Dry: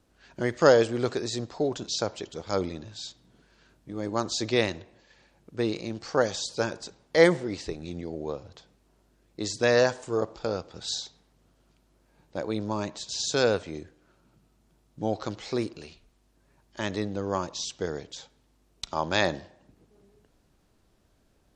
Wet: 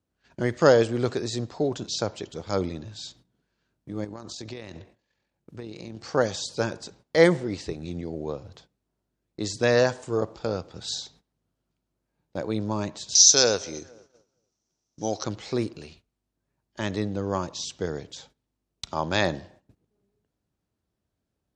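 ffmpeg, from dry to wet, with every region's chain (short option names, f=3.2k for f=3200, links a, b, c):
-filter_complex "[0:a]asettb=1/sr,asplit=3[a][b][c];[a]atrim=end=4.044[d];[b]atrim=start=4.04:end=6.04,asetpts=PTS-STARTPTS,afade=t=in:d=0.004:c=qsin,afade=t=out:st=1.996:d=0.004:c=qsin,acompressor=threshold=-33dB:ratio=16:attack=3.2:release=140:knee=1:detection=peak,tremolo=f=43:d=0.4[e];[c]atrim=start=6.036[f];[d][e]acrossfade=d=0.004:c1=hsin:c2=qsin[g];[g][f]acrossfade=d=0.004:c1=qsin:c2=hsin,asettb=1/sr,asplit=3[h][i][j];[h]atrim=end=13.154[k];[i]atrim=start=13.15:end=15.24,asetpts=PTS-STARTPTS,afade=t=in:d=0.004:c=qsin,afade=t=out:st=2.086:d=0.004:c=qsin,lowpass=f=5.9k:t=q:w=8.7,bass=f=250:g=-8,treble=f=4k:g=5,asplit=2[l][m];[m]adelay=232,lowpass=f=1.9k:p=1,volume=-22.5dB,asplit=2[n][o];[o]adelay=232,lowpass=f=1.9k:p=1,volume=0.53,asplit=2[p][q];[q]adelay=232,lowpass=f=1.9k:p=1,volume=0.53,asplit=2[r][s];[s]adelay=232,lowpass=f=1.9k:p=1,volume=0.53[t];[l][n][p][r][t]amix=inputs=5:normalize=0,atrim=end_sample=92169[u];[j]atrim=start=15.236[v];[k][u]acrossfade=d=0.004:c1=hsin:c2=qsin[w];[w][v]acrossfade=d=0.004:c1=qsin:c2=hsin,highpass=78,lowshelf=f=170:g=8,agate=range=-16dB:threshold=-53dB:ratio=16:detection=peak"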